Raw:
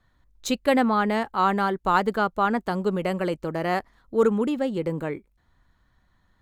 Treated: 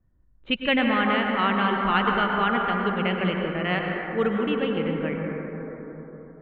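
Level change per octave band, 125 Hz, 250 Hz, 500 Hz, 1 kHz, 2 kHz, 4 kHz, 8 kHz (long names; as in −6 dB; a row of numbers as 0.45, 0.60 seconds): +2.0 dB, +0.5 dB, −2.0 dB, −0.5 dB, +5.5 dB, +7.0 dB, can't be measured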